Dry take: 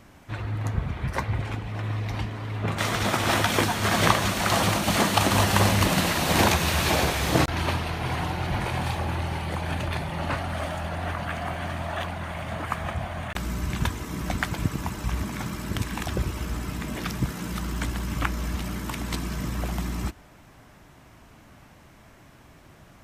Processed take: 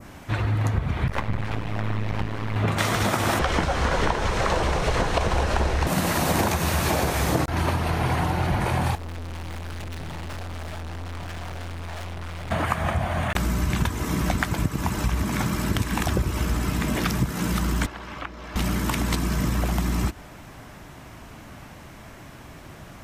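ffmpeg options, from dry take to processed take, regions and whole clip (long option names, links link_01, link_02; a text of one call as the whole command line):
ffmpeg -i in.wav -filter_complex "[0:a]asettb=1/sr,asplit=3[link_01][link_02][link_03];[link_01]atrim=end=1.084[link_04];[link_02]atrim=start=1.08:end=2.56,asetpts=PTS-STARTPTS,afade=type=in:duration=0.004:curve=qsin,afade=type=out:start_time=1.476:duration=0.004:curve=qsin,acrossover=split=2800[link_05][link_06];[link_06]acompressor=threshold=-53dB:ratio=4:attack=1:release=60[link_07];[link_05][link_07]amix=inputs=2:normalize=0,aeval=exprs='max(val(0),0)':channel_layout=same[link_08];[link_03]atrim=start=2.556[link_09];[link_04][link_08]acrossfade=duration=0.004:curve1=hsin:curve2=qsin[link_10];[link_10][link_09]acrossfade=duration=0.004:curve1=qsin:curve2=hsin,asettb=1/sr,asplit=3[link_11][link_12][link_13];[link_11]atrim=end=3.394[link_14];[link_12]atrim=start=3.39:end=5.87,asetpts=PTS-STARTPTS,afade=type=in:duration=0.004:curve=qsin,afade=type=out:start_time=2.476:duration=0.004:curve=qsin,aeval=exprs='val(0)+0.5*0.0316*sgn(val(0))':channel_layout=same,lowpass=5100,afreqshift=-170[link_15];[link_13]atrim=start=5.866[link_16];[link_14][link_15]acrossfade=duration=0.004:curve1=hsin:curve2=qsin[link_17];[link_17][link_16]acrossfade=duration=0.004:curve1=qsin:curve2=hsin,asettb=1/sr,asplit=3[link_18][link_19][link_20];[link_18]atrim=end=8.954[link_21];[link_19]atrim=start=8.95:end=12.51,asetpts=PTS-STARTPTS,afade=type=in:duration=0.004:curve=qsin,afade=type=out:start_time=3.556:duration=0.004:curve=qsin,equalizer=frequency=75:width_type=o:width=1.7:gain=8,bandreject=frequency=60:width_type=h:width=6,bandreject=frequency=120:width_type=h:width=6,bandreject=frequency=180:width_type=h:width=6,bandreject=frequency=240:width_type=h:width=6,bandreject=frequency=300:width_type=h:width=6,bandreject=frequency=360:width_type=h:width=6,bandreject=frequency=420:width_type=h:width=6,bandreject=frequency=480:width_type=h:width=6,bandreject=frequency=540:width_type=h:width=6,bandreject=frequency=600:width_type=h:width=6,aeval=exprs='(tanh(126*val(0)+0.65)-tanh(0.65))/126':channel_layout=same[link_22];[link_20]atrim=start=12.506[link_23];[link_21][link_22]acrossfade=duration=0.004:curve1=hsin:curve2=qsin[link_24];[link_24][link_23]acrossfade=duration=0.004:curve1=qsin:curve2=hsin,asettb=1/sr,asplit=3[link_25][link_26][link_27];[link_25]atrim=end=17.864[link_28];[link_26]atrim=start=17.86:end=18.56,asetpts=PTS-STARTPTS,afade=type=in:duration=0.004:curve=qsin,afade=type=out:start_time=0.696:duration=0.004:curve=qsin,acrossover=split=410 5000:gain=0.158 1 0.126[link_29][link_30][link_31];[link_29][link_30][link_31]amix=inputs=3:normalize=0,acrossover=split=400|990|2300[link_32][link_33][link_34][link_35];[link_32]acompressor=threshold=-48dB:ratio=3[link_36];[link_33]acompressor=threshold=-52dB:ratio=3[link_37];[link_34]acompressor=threshold=-52dB:ratio=3[link_38];[link_35]acompressor=threshold=-59dB:ratio=3[link_39];[link_36][link_37][link_38][link_39]amix=inputs=4:normalize=0[link_40];[link_27]atrim=start=18.556[link_41];[link_28][link_40]acrossfade=duration=0.004:curve1=hsin:curve2=qsin[link_42];[link_42][link_41]acrossfade=duration=0.004:curve1=qsin:curve2=hsin,adynamicequalizer=threshold=0.00794:dfrequency=3300:dqfactor=0.83:tfrequency=3300:tqfactor=0.83:attack=5:release=100:ratio=0.375:range=3.5:mode=cutabove:tftype=bell,acompressor=threshold=-28dB:ratio=6,volume=8.5dB" out.wav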